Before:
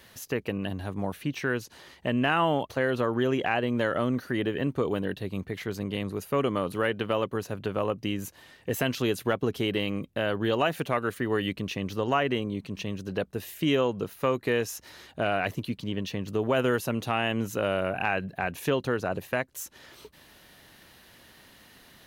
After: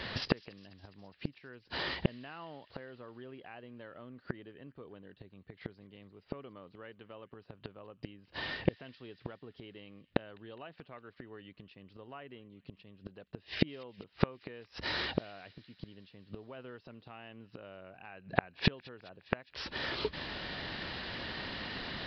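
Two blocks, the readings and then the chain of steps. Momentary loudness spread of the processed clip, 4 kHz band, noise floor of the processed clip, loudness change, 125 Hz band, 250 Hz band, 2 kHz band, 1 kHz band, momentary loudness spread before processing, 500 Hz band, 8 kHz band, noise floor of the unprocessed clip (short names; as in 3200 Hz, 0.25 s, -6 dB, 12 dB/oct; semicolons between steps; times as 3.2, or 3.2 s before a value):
18 LU, -5.0 dB, -68 dBFS, -11.0 dB, -9.5 dB, -12.0 dB, -9.5 dB, -13.5 dB, 8 LU, -15.0 dB, under -20 dB, -55 dBFS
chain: downsampling 11025 Hz; flipped gate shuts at -27 dBFS, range -37 dB; thin delay 0.206 s, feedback 69%, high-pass 2100 Hz, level -21 dB; gain +14 dB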